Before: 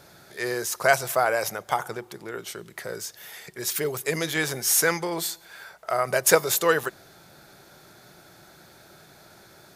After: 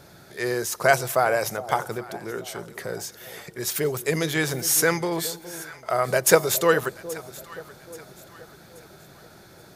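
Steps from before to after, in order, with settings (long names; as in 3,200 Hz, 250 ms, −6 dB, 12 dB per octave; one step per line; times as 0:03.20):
low-shelf EQ 400 Hz +6 dB
on a send: delay that swaps between a low-pass and a high-pass 415 ms, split 820 Hz, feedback 62%, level −14 dB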